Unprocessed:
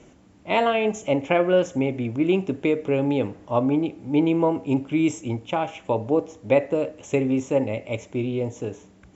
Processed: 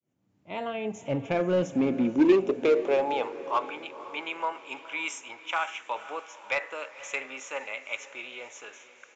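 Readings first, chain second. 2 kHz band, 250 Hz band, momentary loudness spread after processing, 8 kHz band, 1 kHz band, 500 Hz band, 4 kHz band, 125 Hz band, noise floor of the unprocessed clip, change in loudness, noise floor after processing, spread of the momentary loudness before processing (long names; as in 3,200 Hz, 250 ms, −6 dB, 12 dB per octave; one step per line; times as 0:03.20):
−1.0 dB, −6.5 dB, 16 LU, can't be measured, −3.5 dB, −6.0 dB, −2.5 dB, −12.0 dB, −53 dBFS, −5.5 dB, −63 dBFS, 7 LU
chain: fade in at the beginning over 2.98 s
high-pass filter sweep 120 Hz → 1,400 Hz, 0:01.37–0:03.67
in parallel at −6 dB: wave folding −20.5 dBFS
on the sum: feedback delay with all-pass diffusion 511 ms, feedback 42%, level −15 dB
downsampling to 16,000 Hz
level −3.5 dB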